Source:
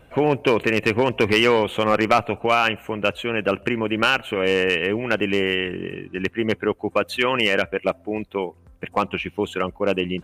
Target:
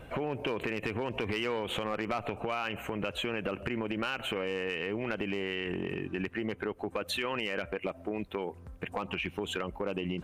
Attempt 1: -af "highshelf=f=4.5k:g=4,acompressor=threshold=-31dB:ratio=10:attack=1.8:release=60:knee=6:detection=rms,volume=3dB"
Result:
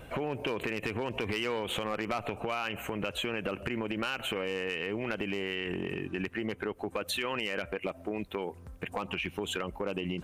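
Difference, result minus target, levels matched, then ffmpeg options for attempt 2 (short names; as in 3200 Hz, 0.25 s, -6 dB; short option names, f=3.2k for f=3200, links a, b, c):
8000 Hz band +4.0 dB
-af "highshelf=f=4.5k:g=-3,acompressor=threshold=-31dB:ratio=10:attack=1.8:release=60:knee=6:detection=rms,volume=3dB"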